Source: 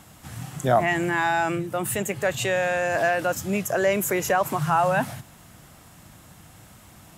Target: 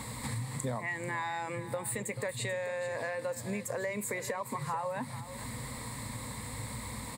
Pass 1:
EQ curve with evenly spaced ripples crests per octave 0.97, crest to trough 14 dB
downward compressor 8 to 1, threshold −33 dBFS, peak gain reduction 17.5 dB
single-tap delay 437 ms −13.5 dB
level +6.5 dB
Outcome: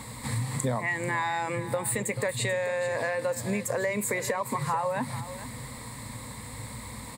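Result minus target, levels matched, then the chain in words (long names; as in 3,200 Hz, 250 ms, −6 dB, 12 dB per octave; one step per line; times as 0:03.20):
downward compressor: peak gain reduction −6.5 dB
EQ curve with evenly spaced ripples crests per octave 0.97, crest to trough 14 dB
downward compressor 8 to 1, threshold −40.5 dBFS, peak gain reduction 24.5 dB
single-tap delay 437 ms −13.5 dB
level +6.5 dB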